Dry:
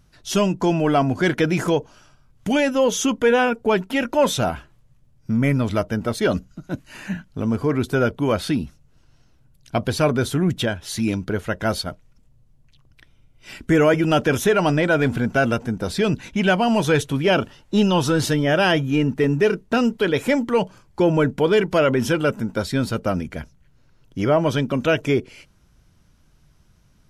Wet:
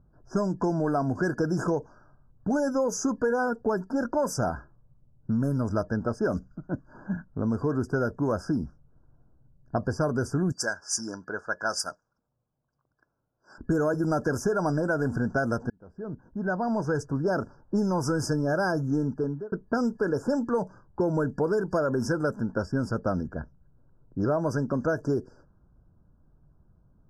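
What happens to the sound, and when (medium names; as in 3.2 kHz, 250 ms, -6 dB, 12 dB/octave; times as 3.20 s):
10.52–13.58 s: frequency weighting ITU-R 468
15.70–18.26 s: fade in equal-power
18.99–19.52 s: fade out
whole clip: level-controlled noise filter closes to 830 Hz, open at -14 dBFS; FFT band-reject 1.7–4.7 kHz; compression, threshold -19 dBFS; trim -3 dB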